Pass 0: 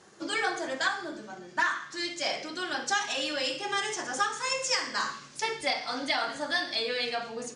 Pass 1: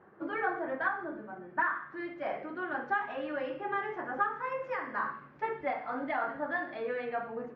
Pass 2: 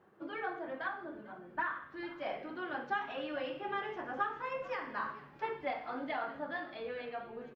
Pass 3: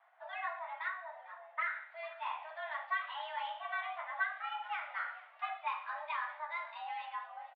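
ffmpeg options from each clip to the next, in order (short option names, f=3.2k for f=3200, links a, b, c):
-af "lowpass=f=1.7k:w=0.5412,lowpass=f=1.7k:w=1.3066,volume=-1dB"
-filter_complex "[0:a]dynaudnorm=f=300:g=11:m=3dB,highshelf=f=2.4k:t=q:w=1.5:g=7.5,asplit=5[a][b][c][d][e];[b]adelay=447,afreqshift=-92,volume=-18.5dB[f];[c]adelay=894,afreqshift=-184,volume=-25.1dB[g];[d]adelay=1341,afreqshift=-276,volume=-31.6dB[h];[e]adelay=1788,afreqshift=-368,volume=-38.2dB[i];[a][f][g][h][i]amix=inputs=5:normalize=0,volume=-6dB"
-filter_complex "[0:a]asplit=2[a][b];[b]adelay=14,volume=-11dB[c];[a][c]amix=inputs=2:normalize=0,highpass=f=350:t=q:w=0.5412,highpass=f=350:t=q:w=1.307,lowpass=f=3.5k:t=q:w=0.5176,lowpass=f=3.5k:t=q:w=0.7071,lowpass=f=3.5k:t=q:w=1.932,afreqshift=320,volume=-1dB"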